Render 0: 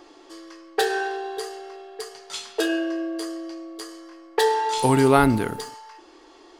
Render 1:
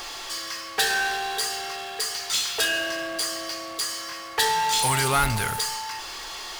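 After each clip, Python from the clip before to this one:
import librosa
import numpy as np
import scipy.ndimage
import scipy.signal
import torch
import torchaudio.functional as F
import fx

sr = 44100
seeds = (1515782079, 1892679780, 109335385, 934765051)

y = fx.tone_stack(x, sr, knobs='10-0-10')
y = fx.power_curve(y, sr, exponent=0.5)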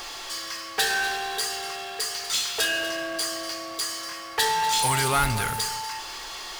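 y = x + 10.0 ** (-14.5 / 20.0) * np.pad(x, (int(243 * sr / 1000.0), 0))[:len(x)]
y = F.gain(torch.from_numpy(y), -1.0).numpy()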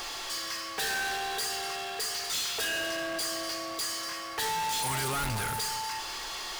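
y = 10.0 ** (-29.5 / 20.0) * np.tanh(x / 10.0 ** (-29.5 / 20.0))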